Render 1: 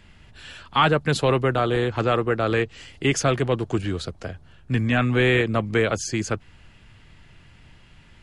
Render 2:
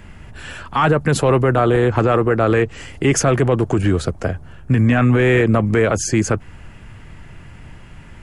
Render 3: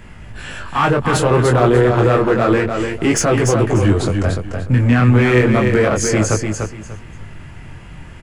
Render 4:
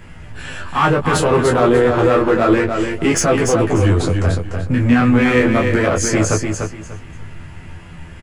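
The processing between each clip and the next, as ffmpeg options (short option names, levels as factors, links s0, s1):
-af "acontrast=27,equalizer=f=3900:w=1.1:g=-11.5,alimiter=level_in=4.22:limit=0.891:release=50:level=0:latency=1,volume=0.531"
-filter_complex "[0:a]asplit=2[s0][s1];[s1]asoftclip=type=hard:threshold=0.133,volume=0.668[s2];[s0][s2]amix=inputs=2:normalize=0,flanger=delay=18:depth=7.1:speed=0.3,aecho=1:1:295|590|885:0.531|0.122|0.0281,volume=1.12"
-filter_complex "[0:a]asplit=2[s0][s1];[s1]adelay=12,volume=0.596[s2];[s0][s2]amix=inputs=2:normalize=0,volume=0.891"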